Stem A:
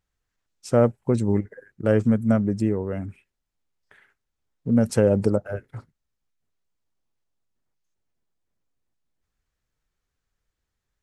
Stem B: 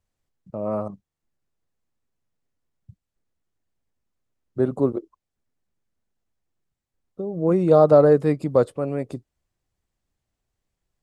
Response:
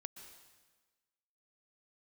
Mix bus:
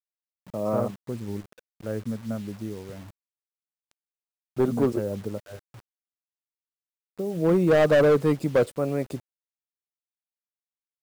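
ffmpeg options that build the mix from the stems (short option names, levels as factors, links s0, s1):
-filter_complex "[0:a]lowpass=f=2200:p=1,volume=0.266[s0];[1:a]highshelf=f=2500:g=4.5,asoftclip=type=hard:threshold=0.188,volume=0.944[s1];[s0][s1]amix=inputs=2:normalize=0,acrusher=bits=7:mix=0:aa=0.000001"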